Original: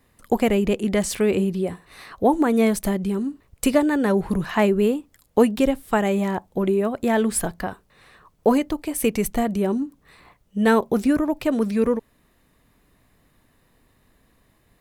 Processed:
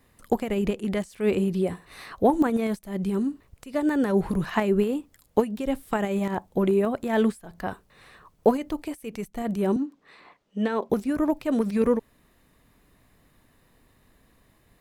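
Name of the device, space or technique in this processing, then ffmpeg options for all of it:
de-esser from a sidechain: -filter_complex "[0:a]asplit=2[s0][s1];[s1]highpass=f=5600:w=0.5412,highpass=f=5600:w=1.3066,apad=whole_len=652979[s2];[s0][s2]sidechaincompress=threshold=0.00562:ratio=20:attack=0.97:release=99,asettb=1/sr,asplit=3[s3][s4][s5];[s3]atrim=end=9.764[s6];[s4]atrim=start=9.76:end=10.9,asetpts=PTS-STARTPTS,afade=t=in:d=0.004:c=qsin,afade=t=out:st=1.136:d=0.004:c=qsin,acrossover=split=200 6300:gain=0.0891 1 0.141[s7][s8][s9];[s7][s8][s9]amix=inputs=3:normalize=0[s10];[s5]atrim=start=10.896[s11];[s6][s10]acrossfade=d=0.004:c1=hsin:c2=qsin[s12];[s12][s11]acrossfade=d=0.004:c1=qsin:c2=hsin"

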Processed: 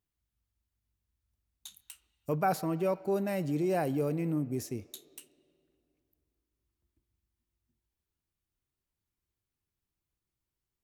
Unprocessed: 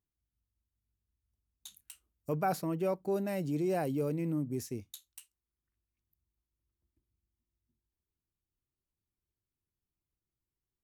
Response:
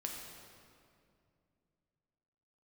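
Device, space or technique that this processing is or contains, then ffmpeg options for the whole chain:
filtered reverb send: -filter_complex "[0:a]asplit=2[s0][s1];[s1]highpass=510,lowpass=4300[s2];[1:a]atrim=start_sample=2205[s3];[s2][s3]afir=irnorm=-1:irlink=0,volume=0.266[s4];[s0][s4]amix=inputs=2:normalize=0,volume=1.26"

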